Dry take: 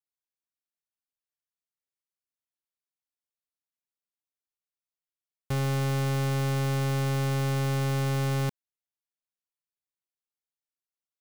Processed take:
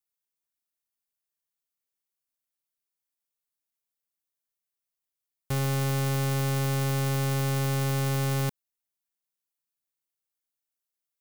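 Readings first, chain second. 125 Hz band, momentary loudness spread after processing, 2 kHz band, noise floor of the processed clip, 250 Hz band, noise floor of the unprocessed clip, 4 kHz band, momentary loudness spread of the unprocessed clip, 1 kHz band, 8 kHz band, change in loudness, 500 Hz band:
0.0 dB, 3 LU, +0.5 dB, below −85 dBFS, 0.0 dB, below −85 dBFS, +1.5 dB, 3 LU, 0.0 dB, +4.5 dB, +0.5 dB, 0.0 dB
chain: high-shelf EQ 7,900 Hz +9.5 dB

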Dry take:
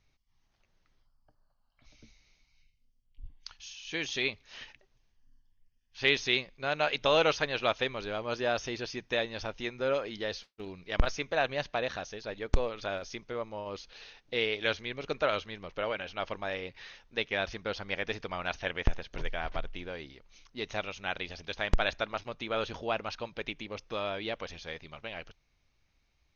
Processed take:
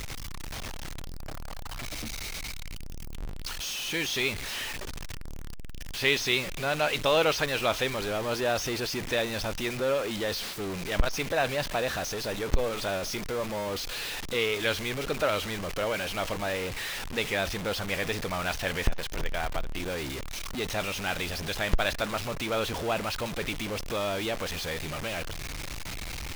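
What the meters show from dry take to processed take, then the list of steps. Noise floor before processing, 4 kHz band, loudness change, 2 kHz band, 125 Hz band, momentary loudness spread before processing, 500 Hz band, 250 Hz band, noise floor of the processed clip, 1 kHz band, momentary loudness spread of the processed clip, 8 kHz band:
−73 dBFS, +4.5 dB, +3.0 dB, +3.5 dB, +6.0 dB, 13 LU, +3.5 dB, +6.0 dB, −36 dBFS, +3.0 dB, 12 LU, can't be measured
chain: converter with a step at zero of −30 dBFS

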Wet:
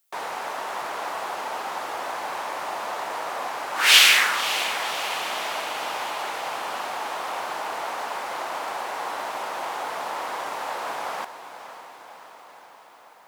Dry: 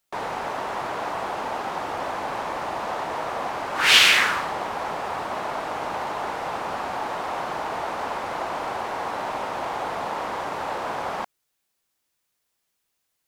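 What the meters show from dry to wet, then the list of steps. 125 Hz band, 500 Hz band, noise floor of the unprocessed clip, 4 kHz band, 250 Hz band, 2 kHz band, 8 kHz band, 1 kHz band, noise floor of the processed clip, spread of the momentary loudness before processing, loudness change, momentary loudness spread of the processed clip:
below −10 dB, −3.5 dB, −77 dBFS, +1.5 dB, −7.5 dB, +0.5 dB, +4.5 dB, −1.5 dB, −49 dBFS, 9 LU, +0.5 dB, 10 LU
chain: high-pass filter 670 Hz 6 dB per octave
high-shelf EQ 8,600 Hz +10 dB
on a send: feedback delay with all-pass diffusion 549 ms, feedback 65%, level −12 dB

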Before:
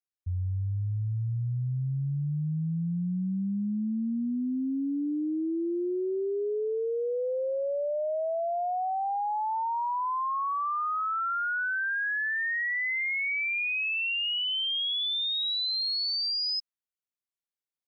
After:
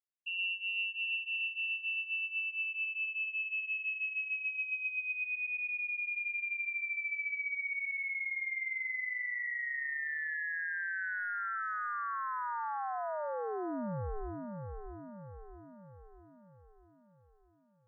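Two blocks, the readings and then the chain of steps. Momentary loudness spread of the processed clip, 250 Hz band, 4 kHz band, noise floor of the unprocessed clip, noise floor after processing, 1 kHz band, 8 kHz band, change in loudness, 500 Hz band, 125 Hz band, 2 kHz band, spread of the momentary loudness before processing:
8 LU, −17.0 dB, below −15 dB, below −85 dBFS, −65 dBFS, −9.5 dB, can't be measured, −5.5 dB, −13.5 dB, −19.0 dB, −1.5 dB, 5 LU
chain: echo with a time of its own for lows and highs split 800 Hz, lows 120 ms, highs 640 ms, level −5.5 dB
voice inversion scrambler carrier 2,800 Hz
level −8.5 dB

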